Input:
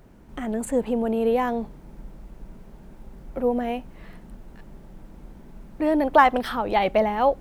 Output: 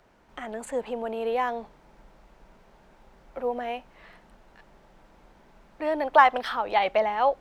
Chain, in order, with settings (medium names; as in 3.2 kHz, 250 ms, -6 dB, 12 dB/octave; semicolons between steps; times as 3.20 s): three-band isolator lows -15 dB, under 520 Hz, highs -12 dB, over 6.7 kHz